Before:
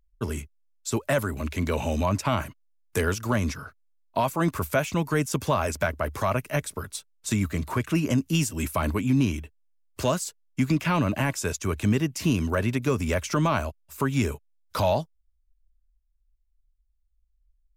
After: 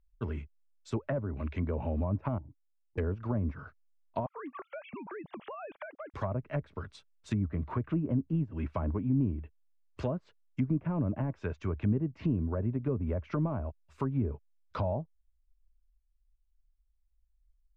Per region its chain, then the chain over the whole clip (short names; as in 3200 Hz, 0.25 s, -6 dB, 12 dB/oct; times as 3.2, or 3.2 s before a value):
2.38–2.98 vocal tract filter u + resonant low shelf 160 Hz +9 dB, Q 1.5 + compressor 3:1, threshold -39 dBFS
4.26–6.14 sine-wave speech + compressor 10:1, threshold -31 dBFS
whole clip: LPF 3100 Hz 12 dB/oct; treble ducked by the level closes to 620 Hz, closed at -21 dBFS; low shelf 120 Hz +5.5 dB; gain -7.5 dB